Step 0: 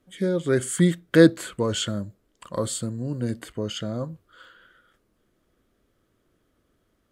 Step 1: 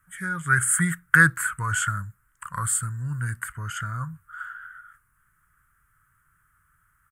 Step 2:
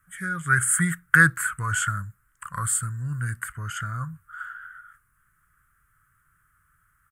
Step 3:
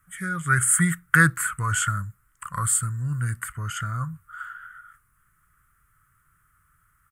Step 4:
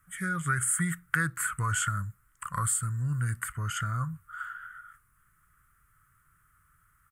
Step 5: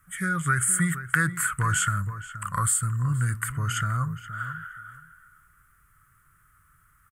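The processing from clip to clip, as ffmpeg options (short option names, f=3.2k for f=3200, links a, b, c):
-af "firequalizer=gain_entry='entry(150,0);entry(220,-21);entry(570,-27);entry(940,-2);entry(1400,14);entry(2300,-2);entry(3800,-19);entry(8600,8)':delay=0.05:min_phase=1,volume=2.5dB"
-af "bandreject=f=920:w=7.9"
-af "equalizer=f=1.6k:t=o:w=0.23:g=-7,volume=2.5dB"
-af "acompressor=threshold=-24dB:ratio=4,volume=-1.5dB"
-filter_complex "[0:a]asplit=2[a][b];[b]adelay=474,lowpass=f=2.4k:p=1,volume=-12dB,asplit=2[c][d];[d]adelay=474,lowpass=f=2.4k:p=1,volume=0.17[e];[a][c][e]amix=inputs=3:normalize=0,volume=4.5dB"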